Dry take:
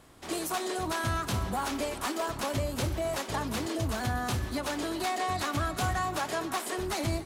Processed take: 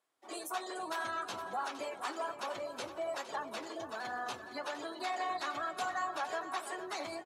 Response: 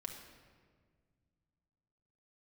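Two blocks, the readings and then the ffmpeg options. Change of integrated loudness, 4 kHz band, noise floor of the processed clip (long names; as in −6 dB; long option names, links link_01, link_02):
−7.0 dB, −8.0 dB, −50 dBFS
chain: -af "afftdn=noise_reduction=20:noise_floor=-39,highpass=520,flanger=delay=4.2:depth=7:regen=-53:speed=1.2:shape=triangular,aecho=1:1:462|924|1386|1848:0.251|0.0955|0.0363|0.0138"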